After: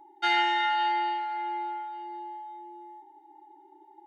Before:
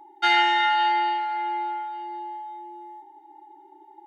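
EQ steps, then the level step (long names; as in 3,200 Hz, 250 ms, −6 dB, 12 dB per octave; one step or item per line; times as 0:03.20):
Butterworth band-reject 1,200 Hz, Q 5.2
low-shelf EQ 360 Hz +4.5 dB
−5.5 dB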